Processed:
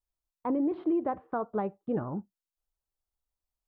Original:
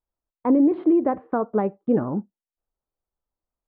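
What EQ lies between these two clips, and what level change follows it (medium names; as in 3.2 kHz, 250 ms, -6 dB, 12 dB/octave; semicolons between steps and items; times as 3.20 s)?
graphic EQ 125/250/500/1000/2000 Hz -3/-10/-7/-3/-7 dB; 0.0 dB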